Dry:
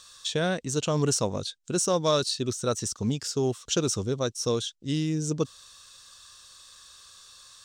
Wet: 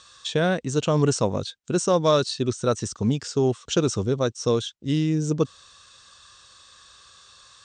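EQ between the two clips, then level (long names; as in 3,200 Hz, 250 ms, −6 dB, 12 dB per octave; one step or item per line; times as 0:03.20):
high-pass filter 45 Hz
Chebyshev low-pass filter 8,800 Hz, order 6
high-shelf EQ 3,800 Hz −10.5 dB
+6.0 dB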